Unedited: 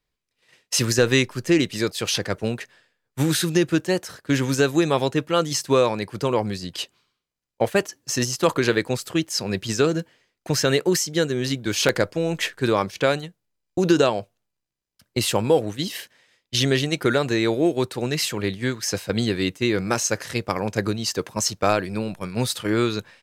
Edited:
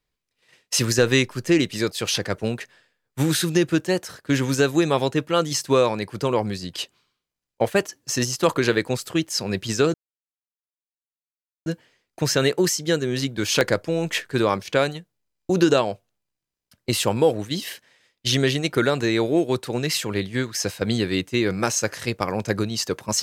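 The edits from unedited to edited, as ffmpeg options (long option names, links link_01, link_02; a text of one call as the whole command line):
ffmpeg -i in.wav -filter_complex "[0:a]asplit=2[link_01][link_02];[link_01]atrim=end=9.94,asetpts=PTS-STARTPTS,afade=type=out:start_time=9.936:duration=0.004:curve=hsin,apad=pad_dur=1.72[link_03];[link_02]atrim=start=9.94,asetpts=PTS-STARTPTS,afade=type=in:duration=0.004:curve=hsin[link_04];[link_03][link_04]concat=n=2:v=0:a=1" out.wav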